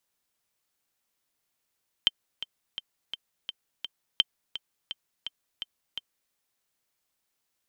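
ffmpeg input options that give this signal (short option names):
-f lavfi -i "aevalsrc='pow(10,(-7-14*gte(mod(t,6*60/169),60/169))/20)*sin(2*PI*3120*mod(t,60/169))*exp(-6.91*mod(t,60/169)/0.03)':d=4.26:s=44100"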